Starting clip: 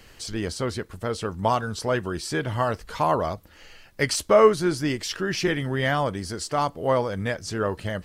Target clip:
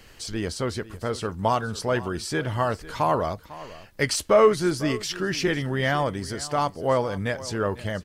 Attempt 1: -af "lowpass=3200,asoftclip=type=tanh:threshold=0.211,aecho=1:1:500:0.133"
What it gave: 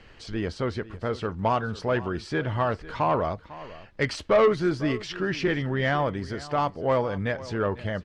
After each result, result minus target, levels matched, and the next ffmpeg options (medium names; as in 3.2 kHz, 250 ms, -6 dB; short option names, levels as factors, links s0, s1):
saturation: distortion +11 dB; 4 kHz band -3.5 dB
-af "lowpass=3200,asoftclip=type=tanh:threshold=0.531,aecho=1:1:500:0.133"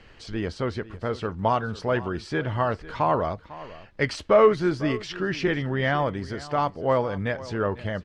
4 kHz band -5.0 dB
-af "asoftclip=type=tanh:threshold=0.531,aecho=1:1:500:0.133"